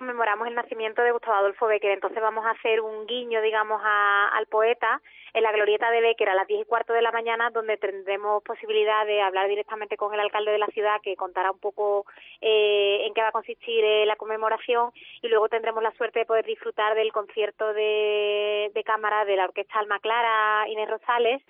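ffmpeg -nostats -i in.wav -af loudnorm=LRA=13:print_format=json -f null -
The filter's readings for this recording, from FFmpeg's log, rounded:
"input_i" : "-24.4",
"input_tp" : "-9.4",
"input_lra" : "2.1",
"input_thresh" : "-34.4",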